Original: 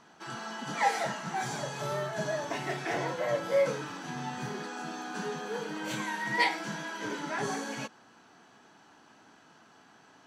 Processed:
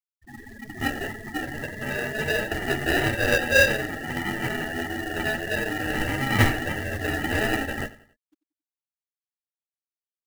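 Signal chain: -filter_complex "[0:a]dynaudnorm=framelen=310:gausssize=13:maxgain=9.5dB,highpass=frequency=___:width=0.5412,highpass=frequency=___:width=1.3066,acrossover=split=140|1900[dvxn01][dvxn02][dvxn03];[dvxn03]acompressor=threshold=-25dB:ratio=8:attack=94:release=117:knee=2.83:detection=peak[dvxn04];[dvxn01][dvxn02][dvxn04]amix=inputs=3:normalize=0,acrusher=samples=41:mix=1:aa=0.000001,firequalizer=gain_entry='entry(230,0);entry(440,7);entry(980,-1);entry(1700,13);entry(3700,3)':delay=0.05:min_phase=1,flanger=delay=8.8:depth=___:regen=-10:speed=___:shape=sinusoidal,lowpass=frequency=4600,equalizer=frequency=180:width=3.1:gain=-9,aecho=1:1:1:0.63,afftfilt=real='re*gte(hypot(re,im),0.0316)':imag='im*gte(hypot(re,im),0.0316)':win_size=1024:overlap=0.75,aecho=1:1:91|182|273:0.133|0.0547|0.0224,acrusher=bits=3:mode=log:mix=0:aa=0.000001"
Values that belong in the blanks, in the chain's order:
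48, 48, 4.6, 1.6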